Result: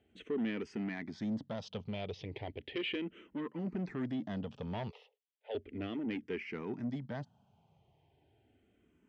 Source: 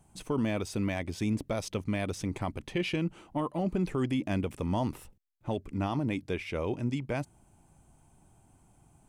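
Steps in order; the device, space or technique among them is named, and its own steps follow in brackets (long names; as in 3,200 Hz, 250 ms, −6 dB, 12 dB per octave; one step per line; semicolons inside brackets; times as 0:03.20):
0:04.90–0:05.55: Chebyshev high-pass filter 420 Hz, order 8
barber-pole phaser into a guitar amplifier (frequency shifter mixed with the dry sound −0.35 Hz; soft clipping −30 dBFS, distortion −13 dB; loudspeaker in its box 95–4,600 Hz, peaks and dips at 230 Hz +5 dB, 430 Hz +7 dB, 1,100 Hz −4 dB, 1,900 Hz +6 dB, 3,100 Hz +7 dB)
level −4 dB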